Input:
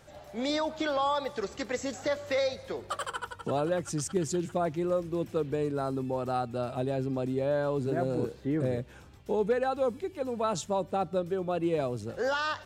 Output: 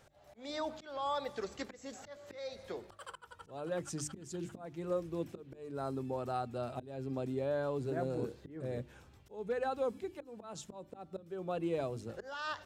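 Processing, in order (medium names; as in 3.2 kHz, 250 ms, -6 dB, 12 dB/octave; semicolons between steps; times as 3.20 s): slow attack 320 ms; hum notches 50/100/150/200/250/300/350 Hz; trim -6 dB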